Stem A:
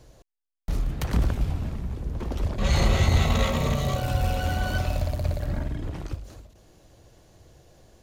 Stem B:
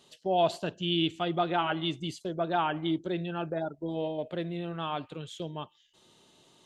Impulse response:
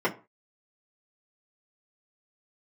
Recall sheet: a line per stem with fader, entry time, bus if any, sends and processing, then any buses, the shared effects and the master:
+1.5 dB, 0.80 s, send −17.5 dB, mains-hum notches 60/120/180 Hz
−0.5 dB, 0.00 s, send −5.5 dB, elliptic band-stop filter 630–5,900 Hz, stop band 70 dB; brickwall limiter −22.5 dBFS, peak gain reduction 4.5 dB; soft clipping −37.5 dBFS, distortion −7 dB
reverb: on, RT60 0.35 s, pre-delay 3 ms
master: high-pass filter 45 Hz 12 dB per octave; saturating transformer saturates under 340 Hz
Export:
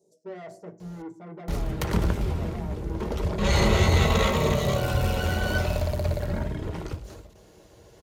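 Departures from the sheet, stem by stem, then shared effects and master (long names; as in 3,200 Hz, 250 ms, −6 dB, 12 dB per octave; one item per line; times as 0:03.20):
stem B −0.5 dB → −10.5 dB
master: missing saturating transformer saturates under 340 Hz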